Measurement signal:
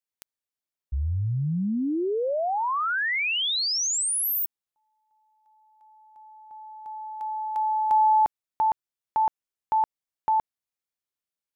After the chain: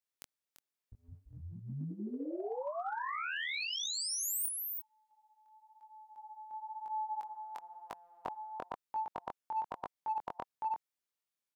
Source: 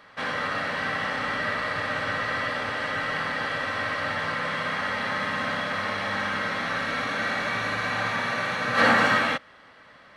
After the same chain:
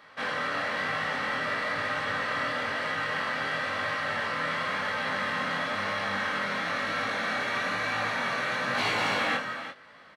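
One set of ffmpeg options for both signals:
ffmpeg -i in.wav -filter_complex "[0:a]aecho=1:1:341:0.251,afftfilt=real='re*lt(hypot(re,im),0.282)':imag='im*lt(hypot(re,im),0.282)':win_size=1024:overlap=0.75,flanger=delay=18.5:depth=6.1:speed=1,asplit=2[link_01][link_02];[link_02]volume=33.5dB,asoftclip=hard,volume=-33.5dB,volume=-12dB[link_03];[link_01][link_03]amix=inputs=2:normalize=0,lowshelf=frequency=110:gain=-9" out.wav

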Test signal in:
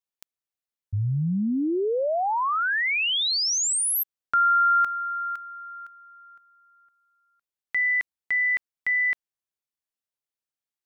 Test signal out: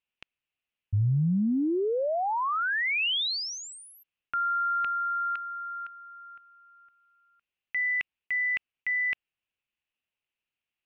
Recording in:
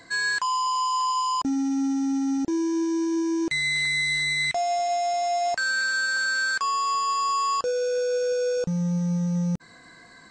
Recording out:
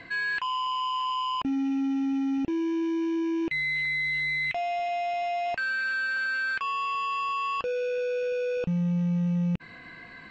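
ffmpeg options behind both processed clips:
ffmpeg -i in.wav -af "lowpass=frequency=2700:width_type=q:width=5.6,areverse,acompressor=threshold=-26dB:ratio=10:attack=1.6:release=116:knee=6:detection=peak,areverse,lowshelf=frequency=270:gain=6" out.wav

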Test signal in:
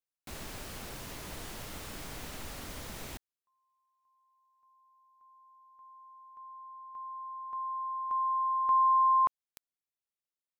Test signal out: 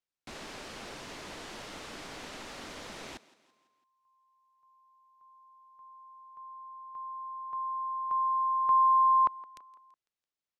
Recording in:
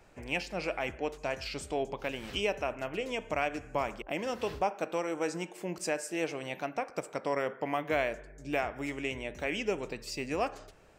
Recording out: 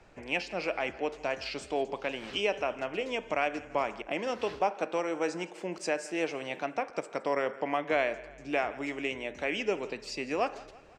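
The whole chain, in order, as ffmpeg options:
ffmpeg -i in.wav -filter_complex "[0:a]lowpass=6100,acrossover=split=200[link_01][link_02];[link_01]acompressor=threshold=-56dB:ratio=10:release=450[link_03];[link_02]aecho=1:1:167|334|501|668:0.106|0.053|0.0265|0.0132[link_04];[link_03][link_04]amix=inputs=2:normalize=0,volume=2dB" out.wav

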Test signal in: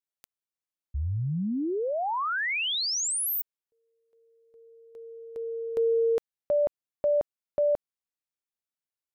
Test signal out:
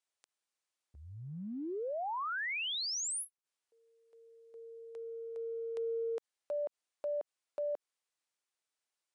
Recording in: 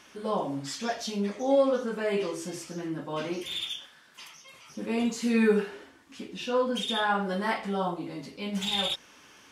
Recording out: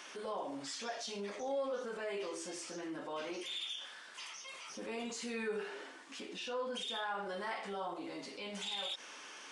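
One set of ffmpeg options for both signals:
ffmpeg -i in.wav -af "highpass=400,acompressor=threshold=-49dB:ratio=2.5:attack=0.1:release=79:knee=6:detection=peak,aresample=22050,aresample=44100,volume=6dB" out.wav

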